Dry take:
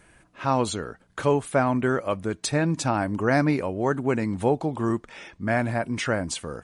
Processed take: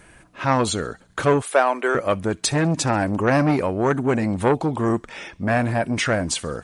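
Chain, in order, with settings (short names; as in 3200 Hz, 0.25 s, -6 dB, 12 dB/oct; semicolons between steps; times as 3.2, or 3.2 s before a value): 1.42–1.95 HPF 400 Hz 24 dB/oct; thin delay 67 ms, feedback 54%, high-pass 3000 Hz, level -23 dB; core saturation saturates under 810 Hz; gain +6.5 dB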